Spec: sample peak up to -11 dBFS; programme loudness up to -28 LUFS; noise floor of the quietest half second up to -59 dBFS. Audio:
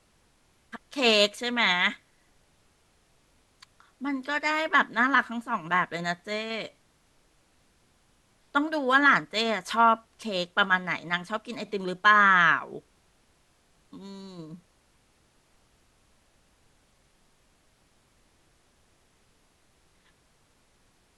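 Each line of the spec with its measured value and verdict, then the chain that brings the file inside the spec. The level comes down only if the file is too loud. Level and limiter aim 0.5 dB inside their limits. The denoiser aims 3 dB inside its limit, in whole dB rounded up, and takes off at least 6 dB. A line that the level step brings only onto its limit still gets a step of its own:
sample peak -7.0 dBFS: fail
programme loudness -24.5 LUFS: fail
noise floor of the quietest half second -65 dBFS: OK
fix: gain -4 dB; limiter -11.5 dBFS

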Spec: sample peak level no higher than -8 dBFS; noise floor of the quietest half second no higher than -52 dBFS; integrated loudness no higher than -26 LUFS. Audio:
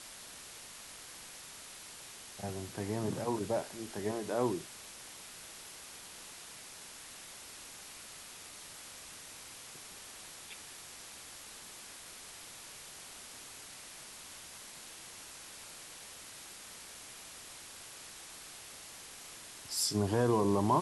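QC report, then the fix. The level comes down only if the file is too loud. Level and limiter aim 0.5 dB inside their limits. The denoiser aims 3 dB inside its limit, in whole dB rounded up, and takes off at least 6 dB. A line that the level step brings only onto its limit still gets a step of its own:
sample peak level -17.5 dBFS: OK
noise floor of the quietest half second -50 dBFS: fail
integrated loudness -40.5 LUFS: OK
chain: denoiser 6 dB, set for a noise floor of -50 dBFS

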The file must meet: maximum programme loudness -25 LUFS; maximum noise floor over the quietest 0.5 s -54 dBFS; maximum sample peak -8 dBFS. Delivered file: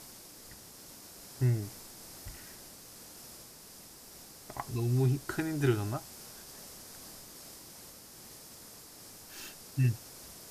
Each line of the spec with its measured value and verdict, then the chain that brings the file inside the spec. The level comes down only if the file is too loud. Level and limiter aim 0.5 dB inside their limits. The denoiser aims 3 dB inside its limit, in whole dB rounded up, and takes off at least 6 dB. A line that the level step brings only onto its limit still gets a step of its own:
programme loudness -35.0 LUFS: OK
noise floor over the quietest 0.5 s -52 dBFS: fail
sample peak -15.0 dBFS: OK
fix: denoiser 6 dB, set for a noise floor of -52 dBFS

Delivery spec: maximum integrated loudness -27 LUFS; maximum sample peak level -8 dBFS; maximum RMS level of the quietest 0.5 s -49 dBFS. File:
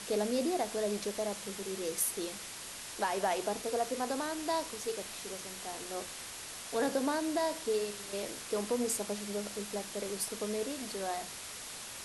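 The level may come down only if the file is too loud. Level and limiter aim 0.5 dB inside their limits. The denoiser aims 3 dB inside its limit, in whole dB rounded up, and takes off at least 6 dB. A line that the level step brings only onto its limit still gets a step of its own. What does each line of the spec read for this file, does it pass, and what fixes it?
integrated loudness -35.5 LUFS: OK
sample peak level -19.0 dBFS: OK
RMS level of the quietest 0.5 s -45 dBFS: fail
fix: denoiser 7 dB, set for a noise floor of -45 dBFS

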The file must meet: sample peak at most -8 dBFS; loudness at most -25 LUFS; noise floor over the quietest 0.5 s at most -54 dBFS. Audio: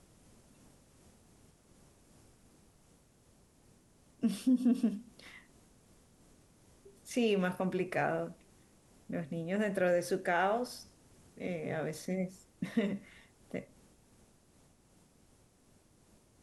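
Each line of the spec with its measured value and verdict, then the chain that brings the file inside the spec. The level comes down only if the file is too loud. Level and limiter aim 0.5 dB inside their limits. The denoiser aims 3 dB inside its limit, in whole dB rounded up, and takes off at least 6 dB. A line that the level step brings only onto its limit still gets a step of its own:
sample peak -18.5 dBFS: OK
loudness -34.5 LUFS: OK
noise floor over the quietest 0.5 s -66 dBFS: OK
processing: none

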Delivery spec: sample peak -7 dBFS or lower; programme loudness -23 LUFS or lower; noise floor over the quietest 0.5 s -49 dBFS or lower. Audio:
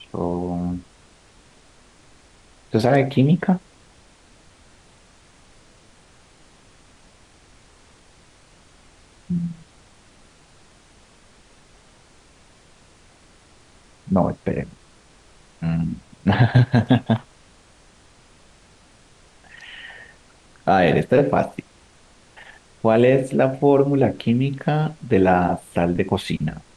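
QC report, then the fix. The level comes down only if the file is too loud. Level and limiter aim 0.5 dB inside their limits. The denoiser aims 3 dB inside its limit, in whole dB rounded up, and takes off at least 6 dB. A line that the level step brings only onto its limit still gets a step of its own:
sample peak -4.0 dBFS: fail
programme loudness -20.5 LUFS: fail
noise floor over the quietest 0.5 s -52 dBFS: OK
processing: gain -3 dB; limiter -7.5 dBFS

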